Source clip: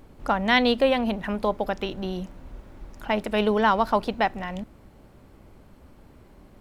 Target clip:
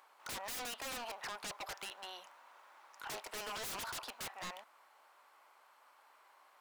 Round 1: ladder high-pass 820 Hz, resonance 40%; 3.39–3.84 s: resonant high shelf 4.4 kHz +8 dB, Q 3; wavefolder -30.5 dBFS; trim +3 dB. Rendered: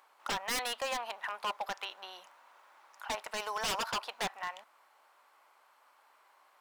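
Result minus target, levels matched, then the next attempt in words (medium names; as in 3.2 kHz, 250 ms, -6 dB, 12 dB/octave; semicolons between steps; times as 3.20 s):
wavefolder: distortion -11 dB
ladder high-pass 820 Hz, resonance 40%; 3.39–3.84 s: resonant high shelf 4.4 kHz +8 dB, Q 3; wavefolder -40.5 dBFS; trim +3 dB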